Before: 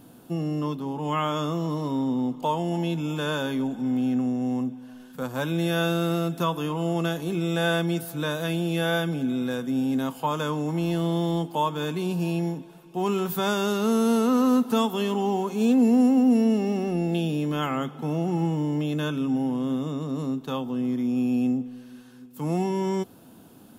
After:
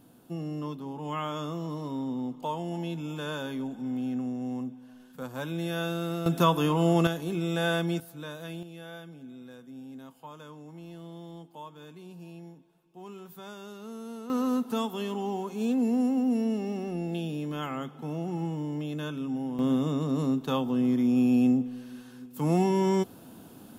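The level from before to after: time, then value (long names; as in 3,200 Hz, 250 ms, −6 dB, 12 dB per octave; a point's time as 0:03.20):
−7 dB
from 0:06.26 +3 dB
from 0:07.07 −3.5 dB
from 0:08.00 −12 dB
from 0:08.63 −19 dB
from 0:14.30 −7 dB
from 0:19.59 +1.5 dB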